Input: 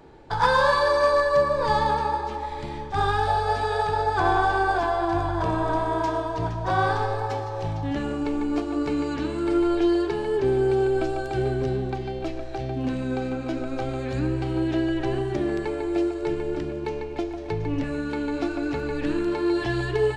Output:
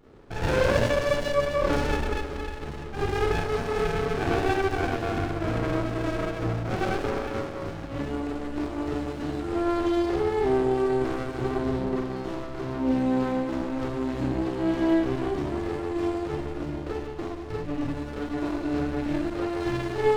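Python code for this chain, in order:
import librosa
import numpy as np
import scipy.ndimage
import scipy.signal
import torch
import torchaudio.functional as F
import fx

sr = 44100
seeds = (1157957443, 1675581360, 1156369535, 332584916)

y = fx.rev_schroeder(x, sr, rt60_s=0.66, comb_ms=27, drr_db=-6.5)
y = fx.running_max(y, sr, window=33)
y = y * 10.0 ** (-7.0 / 20.0)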